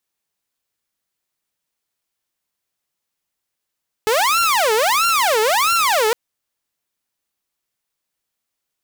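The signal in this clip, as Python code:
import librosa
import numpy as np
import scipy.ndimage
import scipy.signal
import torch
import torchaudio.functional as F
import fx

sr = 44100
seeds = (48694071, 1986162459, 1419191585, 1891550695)

y = fx.siren(sr, length_s=2.06, kind='wail', low_hz=428.0, high_hz=1380.0, per_s=1.5, wave='saw', level_db=-11.5)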